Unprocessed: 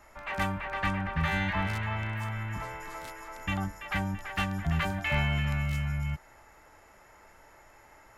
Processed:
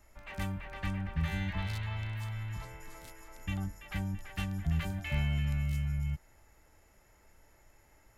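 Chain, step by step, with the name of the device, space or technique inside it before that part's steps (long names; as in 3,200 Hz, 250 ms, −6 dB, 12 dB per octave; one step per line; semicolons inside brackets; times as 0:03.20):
smiley-face EQ (low-shelf EQ 130 Hz +7.5 dB; parametric band 1,100 Hz −8 dB 1.9 octaves; high-shelf EQ 8,400 Hz +5.5 dB)
0:01.58–0:02.65: graphic EQ with 15 bands 250 Hz −9 dB, 1,000 Hz +3 dB, 4,000 Hz +9 dB
level −6 dB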